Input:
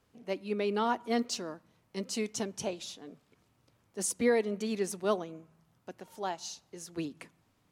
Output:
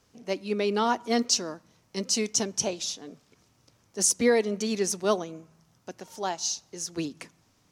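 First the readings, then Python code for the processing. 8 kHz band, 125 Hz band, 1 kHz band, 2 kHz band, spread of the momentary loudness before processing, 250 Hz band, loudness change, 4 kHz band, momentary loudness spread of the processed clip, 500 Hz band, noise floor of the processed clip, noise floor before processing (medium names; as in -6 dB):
+12.0 dB, +4.5 dB, +4.5 dB, +5.0 dB, 19 LU, +4.5 dB, +6.5 dB, +10.5 dB, 18 LU, +4.5 dB, -66 dBFS, -72 dBFS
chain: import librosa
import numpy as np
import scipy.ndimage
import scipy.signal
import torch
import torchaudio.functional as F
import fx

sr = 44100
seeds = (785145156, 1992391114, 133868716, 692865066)

y = fx.peak_eq(x, sr, hz=5800.0, db=10.5, octaves=0.76)
y = y * 10.0 ** (4.5 / 20.0)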